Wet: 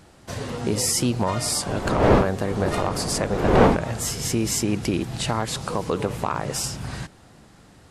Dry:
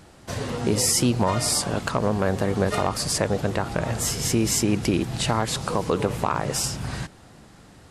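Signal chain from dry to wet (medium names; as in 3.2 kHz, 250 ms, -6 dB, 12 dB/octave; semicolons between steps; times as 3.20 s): 1.66–3.75 s: wind noise 560 Hz -22 dBFS; trim -1.5 dB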